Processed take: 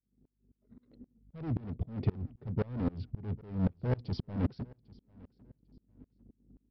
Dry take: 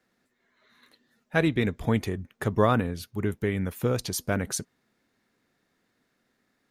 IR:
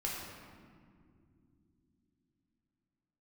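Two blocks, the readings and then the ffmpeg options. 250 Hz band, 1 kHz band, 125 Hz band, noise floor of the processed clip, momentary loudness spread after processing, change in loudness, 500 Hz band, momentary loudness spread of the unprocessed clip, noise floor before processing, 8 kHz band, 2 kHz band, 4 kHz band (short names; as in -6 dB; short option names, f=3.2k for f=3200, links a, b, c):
-7.5 dB, -17.0 dB, -4.5 dB, -80 dBFS, 9 LU, -8.5 dB, -14.0 dB, 9 LU, -74 dBFS, under -40 dB, -22.0 dB, -17.5 dB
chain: -af "equalizer=f=125:t=o:w=1:g=8,equalizer=f=250:t=o:w=1:g=9,equalizer=f=500:t=o:w=1:g=8,equalizer=f=1k:t=o:w=1:g=-6,equalizer=f=2k:t=o:w=1:g=-4,equalizer=f=4k:t=o:w=1:g=-6,areverse,acompressor=threshold=-26dB:ratio=20,areverse,bandreject=f=1.7k:w=7.9,aresample=11025,asoftclip=type=hard:threshold=-36dB,aresample=44100,equalizer=f=96:w=0.58:g=13,anlmdn=0.000398,aeval=exprs='val(0)+0.000891*(sin(2*PI*50*n/s)+sin(2*PI*2*50*n/s)/2+sin(2*PI*3*50*n/s)/3+sin(2*PI*4*50*n/s)/4+sin(2*PI*5*50*n/s)/5)':c=same,aecho=1:1:798|1596:0.0631|0.0151,dynaudnorm=f=140:g=11:m=10.5dB,aeval=exprs='val(0)*pow(10,-28*if(lt(mod(-3.8*n/s,1),2*abs(-3.8)/1000),1-mod(-3.8*n/s,1)/(2*abs(-3.8)/1000),(mod(-3.8*n/s,1)-2*abs(-3.8)/1000)/(1-2*abs(-3.8)/1000))/20)':c=same,volume=-4dB"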